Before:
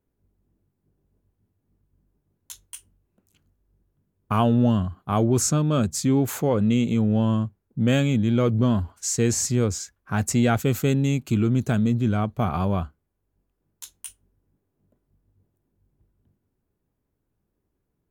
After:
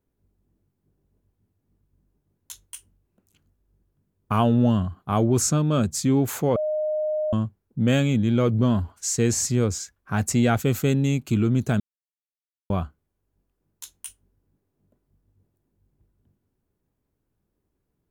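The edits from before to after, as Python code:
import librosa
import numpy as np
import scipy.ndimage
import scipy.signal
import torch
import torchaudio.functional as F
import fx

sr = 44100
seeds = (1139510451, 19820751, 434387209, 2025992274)

y = fx.edit(x, sr, fx.bleep(start_s=6.56, length_s=0.77, hz=614.0, db=-22.0),
    fx.silence(start_s=11.8, length_s=0.9), tone=tone)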